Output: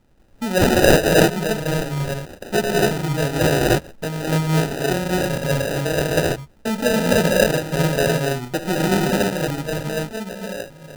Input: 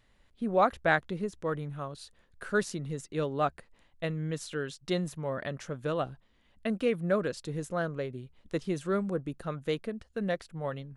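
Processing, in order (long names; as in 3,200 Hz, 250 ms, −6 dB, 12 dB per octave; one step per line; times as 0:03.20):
fade-out on the ending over 2.02 s
reverb whose tail is shaped and stops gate 330 ms rising, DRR −5.5 dB
decimation without filtering 40×
level +7 dB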